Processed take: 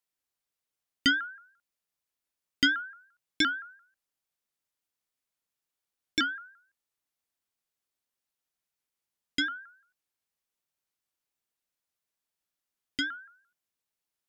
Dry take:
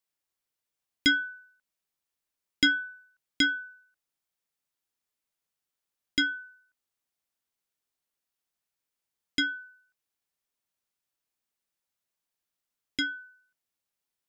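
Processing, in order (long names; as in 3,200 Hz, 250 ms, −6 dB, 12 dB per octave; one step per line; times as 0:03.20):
pitch modulation by a square or saw wave saw up 5.8 Hz, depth 160 cents
level −1.5 dB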